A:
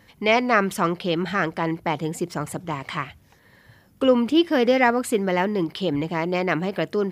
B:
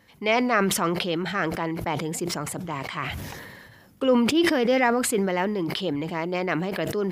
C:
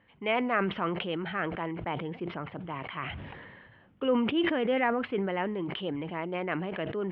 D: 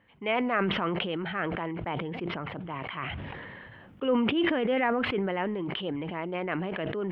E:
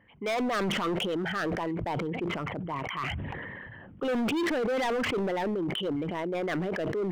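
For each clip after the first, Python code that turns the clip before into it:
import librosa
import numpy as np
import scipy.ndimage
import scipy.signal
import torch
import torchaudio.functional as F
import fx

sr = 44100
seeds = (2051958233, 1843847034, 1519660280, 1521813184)

y1 = fx.low_shelf(x, sr, hz=100.0, db=-6.5)
y1 = fx.sustainer(y1, sr, db_per_s=30.0)
y1 = F.gain(torch.from_numpy(y1), -3.5).numpy()
y2 = scipy.signal.sosfilt(scipy.signal.ellip(4, 1.0, 60, 3100.0, 'lowpass', fs=sr, output='sos'), y1)
y2 = F.gain(torch.from_numpy(y2), -5.5).numpy()
y3 = fx.sustainer(y2, sr, db_per_s=21.0)
y4 = fx.envelope_sharpen(y3, sr, power=1.5)
y4 = np.clip(y4, -10.0 ** (-29.0 / 20.0), 10.0 ** (-29.0 / 20.0))
y4 = F.gain(torch.from_numpy(y4), 3.0).numpy()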